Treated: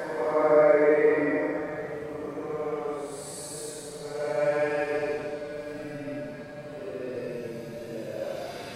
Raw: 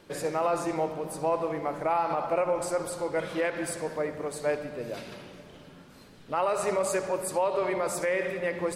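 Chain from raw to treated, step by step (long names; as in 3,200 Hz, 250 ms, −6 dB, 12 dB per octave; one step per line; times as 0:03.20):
gain on a spectral selection 0:03.72–0:04.16, 260–2,400 Hz +8 dB
extreme stretch with random phases 8.3×, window 0.10 s, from 0:03.93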